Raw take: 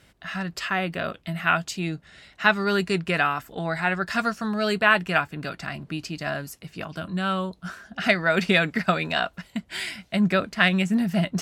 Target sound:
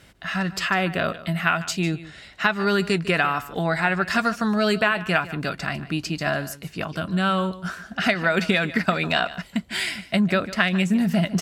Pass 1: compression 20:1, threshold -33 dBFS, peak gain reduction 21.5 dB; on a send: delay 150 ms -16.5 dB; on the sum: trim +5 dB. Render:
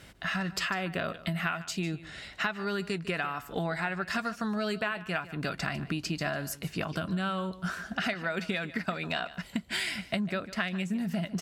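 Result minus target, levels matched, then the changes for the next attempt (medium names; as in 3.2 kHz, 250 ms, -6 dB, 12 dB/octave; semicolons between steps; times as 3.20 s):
compression: peak gain reduction +11.5 dB
change: compression 20:1, threshold -21 dBFS, peak gain reduction 10 dB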